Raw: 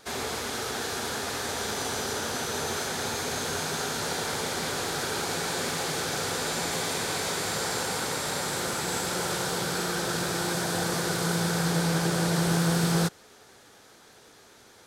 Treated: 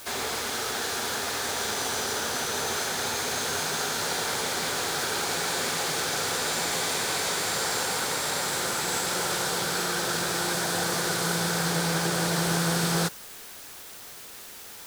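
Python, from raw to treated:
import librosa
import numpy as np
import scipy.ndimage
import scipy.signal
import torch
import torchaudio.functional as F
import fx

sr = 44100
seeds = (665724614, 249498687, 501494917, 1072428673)

p1 = fx.low_shelf(x, sr, hz=430.0, db=-7.0)
p2 = fx.quant_dither(p1, sr, seeds[0], bits=6, dither='triangular')
y = p1 + (p2 * 10.0 ** (-8.0 / 20.0))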